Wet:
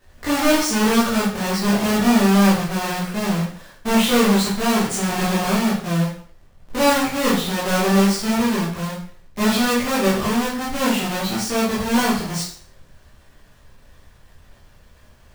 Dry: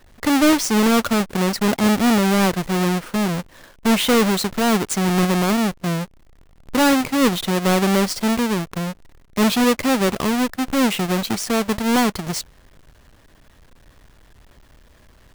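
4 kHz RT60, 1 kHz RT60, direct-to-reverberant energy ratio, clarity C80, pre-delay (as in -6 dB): 0.50 s, 0.55 s, -8.5 dB, 7.5 dB, 6 ms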